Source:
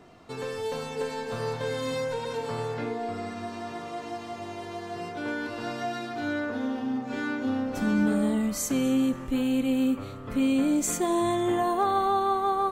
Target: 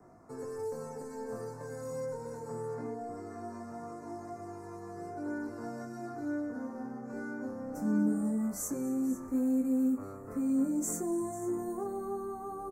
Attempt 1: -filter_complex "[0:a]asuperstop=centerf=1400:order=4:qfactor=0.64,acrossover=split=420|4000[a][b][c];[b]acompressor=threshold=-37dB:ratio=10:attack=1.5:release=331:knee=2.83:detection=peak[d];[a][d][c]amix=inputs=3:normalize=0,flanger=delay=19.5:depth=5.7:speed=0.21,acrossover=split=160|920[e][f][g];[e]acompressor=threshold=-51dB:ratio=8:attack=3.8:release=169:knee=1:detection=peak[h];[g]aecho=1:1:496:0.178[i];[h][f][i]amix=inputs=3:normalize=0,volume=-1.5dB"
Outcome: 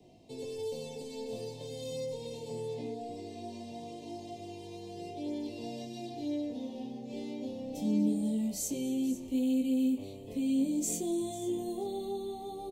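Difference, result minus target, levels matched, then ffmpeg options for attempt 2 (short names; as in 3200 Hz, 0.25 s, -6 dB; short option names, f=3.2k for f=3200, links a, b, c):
4000 Hz band +15.5 dB
-filter_complex "[0:a]asuperstop=centerf=3200:order=4:qfactor=0.64,acrossover=split=420|4000[a][b][c];[b]acompressor=threshold=-37dB:ratio=10:attack=1.5:release=331:knee=2.83:detection=peak[d];[a][d][c]amix=inputs=3:normalize=0,flanger=delay=19.5:depth=5.7:speed=0.21,acrossover=split=160|920[e][f][g];[e]acompressor=threshold=-51dB:ratio=8:attack=3.8:release=169:knee=1:detection=peak[h];[g]aecho=1:1:496:0.178[i];[h][f][i]amix=inputs=3:normalize=0,volume=-1.5dB"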